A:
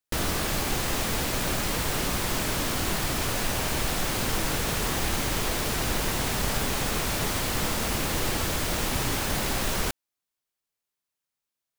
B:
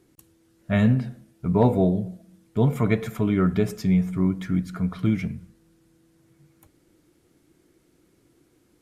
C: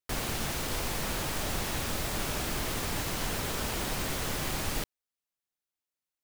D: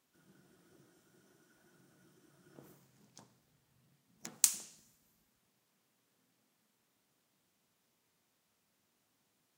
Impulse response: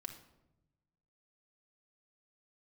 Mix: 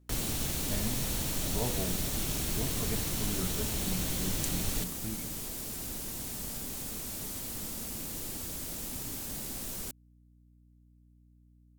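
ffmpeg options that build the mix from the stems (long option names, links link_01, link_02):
-filter_complex "[0:a]equalizer=frequency=250:width_type=o:width=1:gain=6,equalizer=frequency=8000:width_type=o:width=1:gain=4,equalizer=frequency=16000:width_type=o:width=1:gain=12,acrossover=split=320|3000[link_01][link_02][link_03];[link_02]acompressor=threshold=-36dB:ratio=6[link_04];[link_01][link_04][link_03]amix=inputs=3:normalize=0,aeval=exprs='val(0)+0.00631*(sin(2*PI*60*n/s)+sin(2*PI*2*60*n/s)/2+sin(2*PI*3*60*n/s)/3+sin(2*PI*4*60*n/s)/4+sin(2*PI*5*60*n/s)/5)':channel_layout=same,volume=-15.5dB[link_05];[1:a]volume=-18.5dB[link_06];[2:a]bandreject=frequency=4900:width=12,acrossover=split=320|3000[link_07][link_08][link_09];[link_08]acompressor=threshold=-49dB:ratio=6[link_10];[link_07][link_10][link_09]amix=inputs=3:normalize=0,volume=0.5dB[link_11];[3:a]volume=-11dB[link_12];[link_05][link_06][link_11][link_12]amix=inputs=4:normalize=0,equalizer=frequency=600:width=1:gain=3"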